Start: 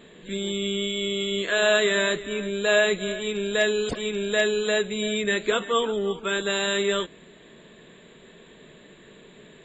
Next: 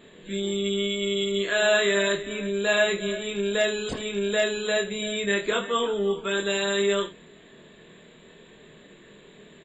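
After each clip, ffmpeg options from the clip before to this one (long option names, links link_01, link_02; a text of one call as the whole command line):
ffmpeg -i in.wav -af "aecho=1:1:25|78:0.631|0.2,volume=-2.5dB" out.wav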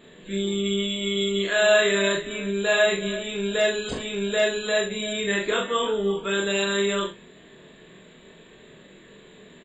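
ffmpeg -i in.wav -filter_complex "[0:a]asplit=2[link_01][link_02];[link_02]adelay=41,volume=-4dB[link_03];[link_01][link_03]amix=inputs=2:normalize=0" out.wav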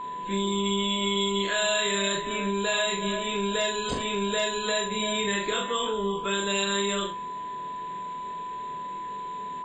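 ffmpeg -i in.wav -filter_complex "[0:a]acrossover=split=160|3000[link_01][link_02][link_03];[link_02]acompressor=threshold=-29dB:ratio=6[link_04];[link_01][link_04][link_03]amix=inputs=3:normalize=0,aeval=exprs='val(0)+0.02*sin(2*PI*1000*n/s)':channel_layout=same,volume=1.5dB" out.wav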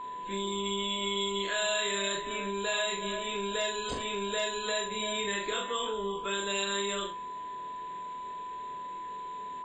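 ffmpeg -i in.wav -af "equalizer=frequency=170:width_type=o:width=0.94:gain=-6.5,volume=-4.5dB" out.wav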